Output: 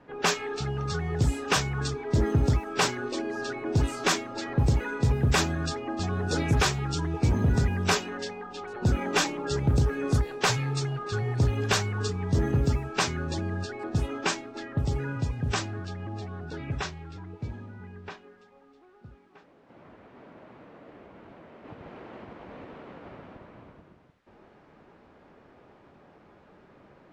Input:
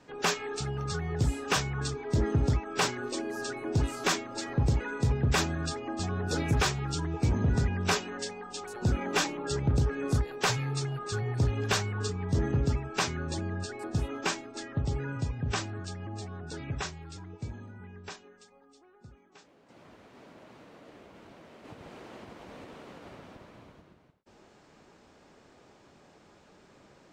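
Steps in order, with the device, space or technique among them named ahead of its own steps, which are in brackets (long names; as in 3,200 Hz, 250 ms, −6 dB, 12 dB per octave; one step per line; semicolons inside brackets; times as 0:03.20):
cassette deck with a dynamic noise filter (white noise bed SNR 34 dB; low-pass that shuts in the quiet parts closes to 1,900 Hz, open at −24 dBFS)
level +3 dB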